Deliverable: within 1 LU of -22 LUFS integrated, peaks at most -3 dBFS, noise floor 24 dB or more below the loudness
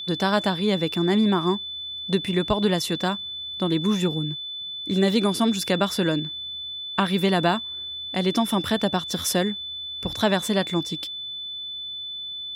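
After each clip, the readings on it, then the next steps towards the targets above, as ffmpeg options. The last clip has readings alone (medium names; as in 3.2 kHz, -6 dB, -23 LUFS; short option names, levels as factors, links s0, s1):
steady tone 3.5 kHz; tone level -31 dBFS; loudness -24.5 LUFS; peak level -8.0 dBFS; loudness target -22.0 LUFS
-> -af "bandreject=f=3500:w=30"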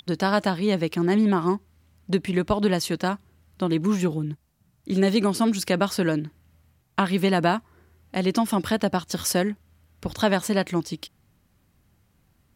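steady tone not found; loudness -24.5 LUFS; peak level -8.5 dBFS; loudness target -22.0 LUFS
-> -af "volume=1.33"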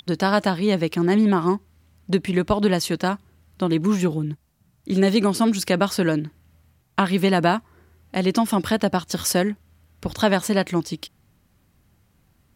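loudness -22.0 LUFS; peak level -6.0 dBFS; noise floor -63 dBFS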